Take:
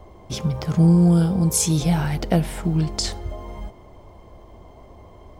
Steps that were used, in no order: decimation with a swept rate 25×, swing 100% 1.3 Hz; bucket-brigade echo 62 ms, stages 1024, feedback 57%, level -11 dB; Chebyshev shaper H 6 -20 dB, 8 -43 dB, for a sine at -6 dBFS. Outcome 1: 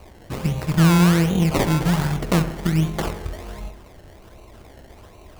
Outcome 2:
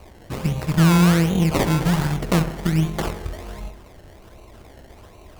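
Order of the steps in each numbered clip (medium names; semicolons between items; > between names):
Chebyshev shaper > decimation with a swept rate > bucket-brigade echo; decimation with a swept rate > bucket-brigade echo > Chebyshev shaper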